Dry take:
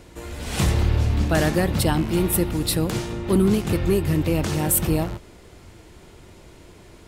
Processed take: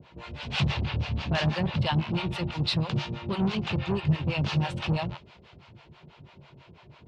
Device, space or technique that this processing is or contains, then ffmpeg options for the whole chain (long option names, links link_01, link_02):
guitar amplifier with harmonic tremolo: -filter_complex "[0:a]acrossover=split=540[link_01][link_02];[link_01]aeval=exprs='val(0)*(1-1/2+1/2*cos(2*PI*6.1*n/s))':channel_layout=same[link_03];[link_02]aeval=exprs='val(0)*(1-1/2-1/2*cos(2*PI*6.1*n/s))':channel_layout=same[link_04];[link_03][link_04]amix=inputs=2:normalize=0,asoftclip=type=tanh:threshold=-20dB,highpass=86,equalizer=frequency=140:width_type=q:width=4:gain=9,equalizer=frequency=310:width_type=q:width=4:gain=-9,equalizer=frequency=450:width_type=q:width=4:gain=-4,equalizer=frequency=950:width_type=q:width=4:gain=4,equalizer=frequency=1900:width_type=q:width=4:gain=-3,equalizer=frequency=2700:width_type=q:width=4:gain=4,lowpass=frequency=4200:width=0.5412,lowpass=frequency=4200:width=1.3066,adynamicequalizer=threshold=0.00355:dfrequency=2000:dqfactor=0.7:tfrequency=2000:tqfactor=0.7:attack=5:release=100:ratio=0.375:range=3:mode=boostabove:tftype=highshelf"